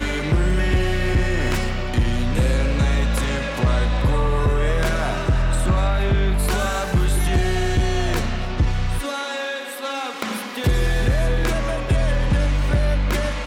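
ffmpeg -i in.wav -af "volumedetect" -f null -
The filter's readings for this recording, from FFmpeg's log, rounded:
mean_volume: -19.1 dB
max_volume: -11.5 dB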